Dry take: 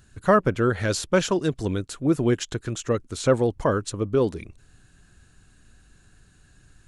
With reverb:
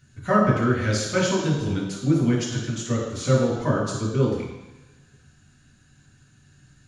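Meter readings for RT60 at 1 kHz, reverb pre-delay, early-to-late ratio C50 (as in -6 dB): 1.2 s, 3 ms, 2.5 dB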